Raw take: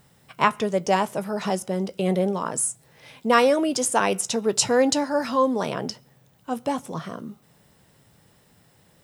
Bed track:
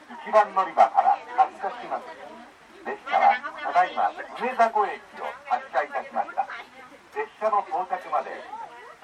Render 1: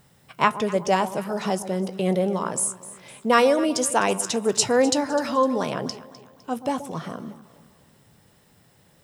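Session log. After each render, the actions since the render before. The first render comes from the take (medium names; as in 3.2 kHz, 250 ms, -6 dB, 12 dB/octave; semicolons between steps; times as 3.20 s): echo whose repeats swap between lows and highs 127 ms, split 1 kHz, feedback 63%, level -12.5 dB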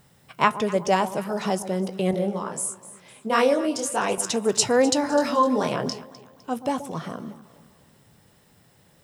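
2.11–4.18 s: detune thickener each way 51 cents; 5.01–6.04 s: doubling 24 ms -4 dB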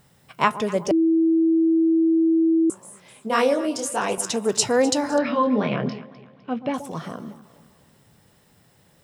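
0.91–2.70 s: bleep 326 Hz -15 dBFS; 5.18–6.74 s: cabinet simulation 100–3600 Hz, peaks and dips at 140 Hz +8 dB, 210 Hz +7 dB, 890 Hz -6 dB, 2.3 kHz +7 dB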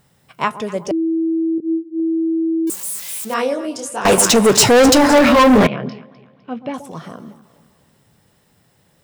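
1.58–2.00 s: detune thickener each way 18 cents; 2.67–3.34 s: zero-crossing glitches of -21 dBFS; 4.05–5.67 s: waveshaping leveller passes 5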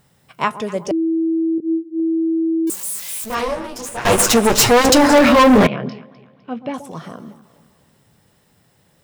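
3.24–4.90 s: comb filter that takes the minimum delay 8.5 ms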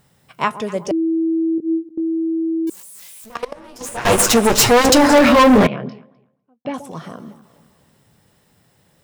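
1.88–3.81 s: level held to a coarse grid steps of 20 dB; 5.45–6.65 s: studio fade out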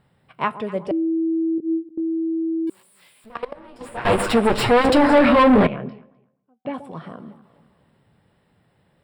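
boxcar filter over 7 samples; feedback comb 190 Hz, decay 0.69 s, harmonics all, mix 30%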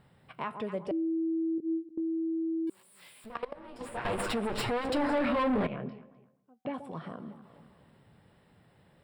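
peak limiter -14.5 dBFS, peak gain reduction 8 dB; compression 1.5:1, threshold -46 dBFS, peak gain reduction 10.5 dB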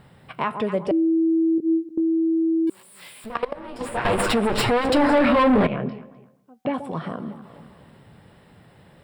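trim +11 dB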